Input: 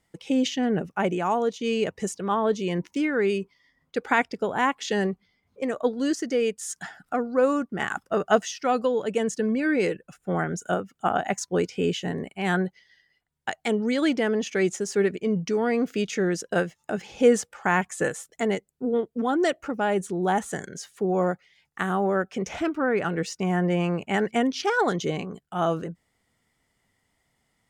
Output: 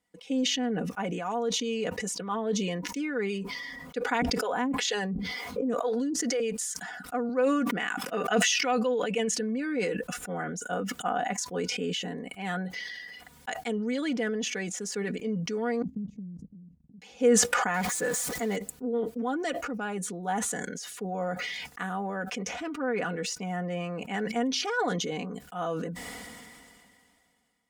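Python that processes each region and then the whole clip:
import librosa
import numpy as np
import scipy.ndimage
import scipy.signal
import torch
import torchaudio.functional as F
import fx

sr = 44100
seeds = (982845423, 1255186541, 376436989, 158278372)

y = fx.chain(x, sr, fx.harmonic_tremolo(hz=2.1, depth_pct=100, crossover_hz=400.0),
    fx.env_flatten(amount_pct=100), at=(4.22, 6.4))
y = fx.chain(y, sr, fx.highpass(hz=180.0, slope=12),
    fx.peak_eq(hz=2500.0, db=8.0, octaves=0.66),
    fx.sustainer(db_per_s=43.0), at=(7.29, 9.39))
y = fx.chain(y, sr, fx.cheby2_lowpass(hz=530.0, order=4, stop_db=60),
    fx.level_steps(step_db=14),
    fx.doppler_dist(depth_ms=0.15), at=(15.82, 17.02))
y = fx.chain(y, sr, fx.zero_step(step_db=-31.5),
    fx.peak_eq(hz=2800.0, db=-5.5, octaves=0.27), at=(17.74, 18.56))
y = fx.highpass(y, sr, hz=120.0, slope=6)
y = y + 0.7 * np.pad(y, (int(4.1 * sr / 1000.0), 0))[:len(y)]
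y = fx.sustainer(y, sr, db_per_s=25.0)
y = F.gain(torch.from_numpy(y), -9.0).numpy()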